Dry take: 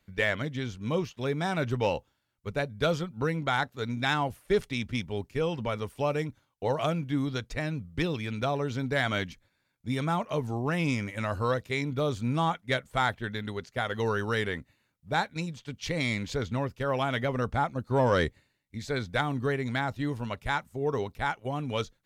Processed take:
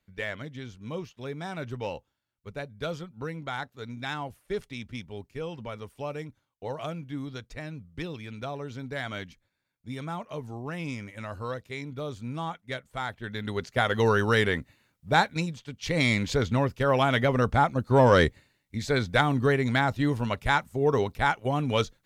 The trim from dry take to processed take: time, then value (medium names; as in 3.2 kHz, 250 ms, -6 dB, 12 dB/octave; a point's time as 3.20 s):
13.08 s -6.5 dB
13.63 s +6 dB
15.31 s +6 dB
15.76 s -2 dB
15.99 s +5.5 dB